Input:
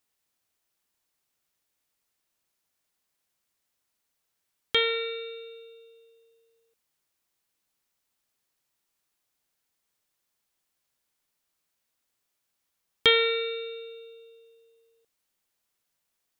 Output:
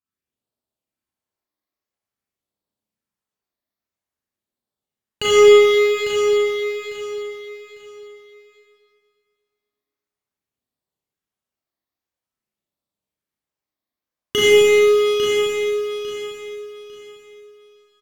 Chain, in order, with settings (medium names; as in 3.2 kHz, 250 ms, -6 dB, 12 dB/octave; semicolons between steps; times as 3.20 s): high-pass 86 Hz 6 dB/octave; bass shelf 480 Hz +3.5 dB; waveshaping leveller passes 5; treble shelf 2.3 kHz -9.5 dB; in parallel at -1 dB: compression, threshold -21 dBFS, peak gain reduction 10.5 dB; on the sum: tape speed -9%; phase shifter stages 12, 0.49 Hz, lowest notch 140–2300 Hz; on a send: feedback delay 850 ms, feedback 27%, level -8 dB; on the sum: Schroeder reverb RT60 2 s, combs from 29 ms, DRR -8 dB; trim -5 dB